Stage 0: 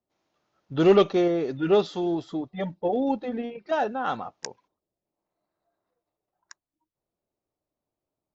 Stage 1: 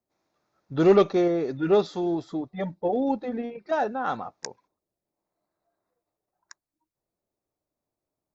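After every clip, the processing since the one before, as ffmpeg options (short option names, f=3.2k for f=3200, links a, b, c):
-af "equalizer=f=3k:t=o:w=0.28:g=-11"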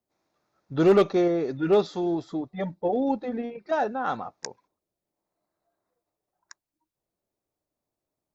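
-af "asoftclip=type=hard:threshold=-12dB"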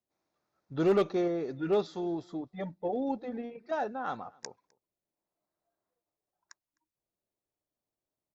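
-filter_complex "[0:a]asplit=2[a][b];[b]adelay=256.6,volume=-27dB,highshelf=f=4k:g=-5.77[c];[a][c]amix=inputs=2:normalize=0,volume=-7dB"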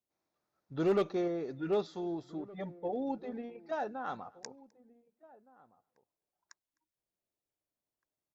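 -filter_complex "[0:a]asplit=2[a][b];[b]adelay=1516,volume=-21dB,highshelf=f=4k:g=-34.1[c];[a][c]amix=inputs=2:normalize=0,volume=-3.5dB"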